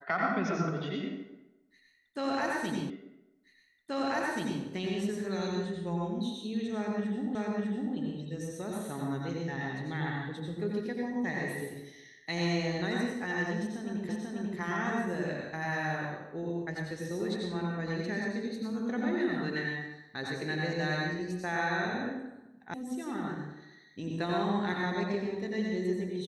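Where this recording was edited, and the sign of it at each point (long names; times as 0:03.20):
0:02.90: the same again, the last 1.73 s
0:07.35: the same again, the last 0.6 s
0:14.09: the same again, the last 0.49 s
0:22.74: cut off before it has died away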